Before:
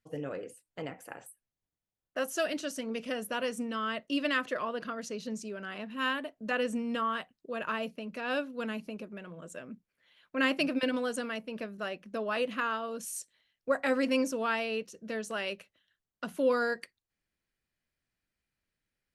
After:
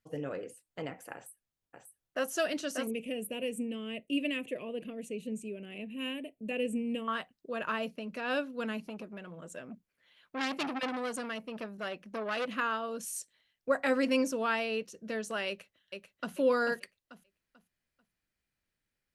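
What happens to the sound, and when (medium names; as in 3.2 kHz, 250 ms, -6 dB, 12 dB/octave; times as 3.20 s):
1.14–2.31 s: echo throw 590 ms, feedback 10%, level -4.5 dB
2.87–7.08 s: FFT filter 460 Hz 0 dB, 700 Hz -9 dB, 1.4 kHz -25 dB, 2.5 kHz +3 dB, 5.1 kHz -23 dB, 8.2 kHz +1 dB
8.85–12.48 s: transformer saturation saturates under 2.8 kHz
15.48–16.35 s: echo throw 440 ms, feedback 30%, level -5 dB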